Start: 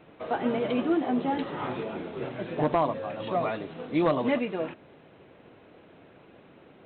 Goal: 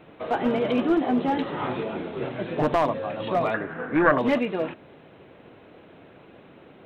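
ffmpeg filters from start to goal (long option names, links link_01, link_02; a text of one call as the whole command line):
ffmpeg -i in.wav -filter_complex "[0:a]aeval=exprs='clip(val(0),-1,0.0891)':channel_layout=same,asettb=1/sr,asplit=3[link_01][link_02][link_03];[link_01]atrim=end=3.544[link_04];[link_02]atrim=start=3.54:end=4.18,asetpts=PTS-STARTPTS,afade=type=in:duration=0.004:curve=qsin,afade=type=out:start_time=0.636:duration=0.004:curve=qsin,lowpass=frequency=1600:width_type=q:width=6.3[link_05];[link_03]atrim=start=4.176[link_06];[link_04][link_05]acrossfade=duration=0.004:curve1=hsin:curve2=qsin[link_07];[link_07][link_06]acrossfade=duration=0.004:curve1=qsin:curve2=hsin,volume=4dB" out.wav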